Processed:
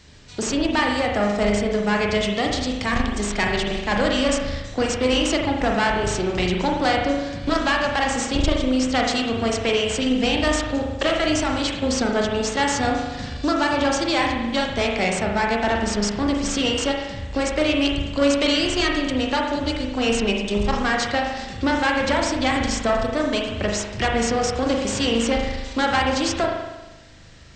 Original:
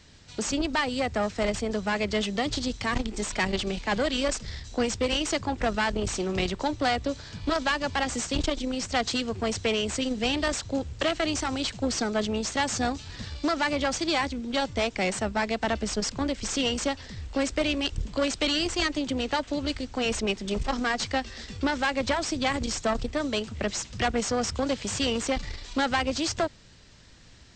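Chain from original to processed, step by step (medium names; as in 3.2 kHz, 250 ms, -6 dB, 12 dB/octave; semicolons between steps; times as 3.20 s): 13.35–13.98 s: peaking EQ 2.1 kHz -9 dB 0.24 oct; reverberation RT60 1.1 s, pre-delay 39 ms, DRR 0 dB; trim +3.5 dB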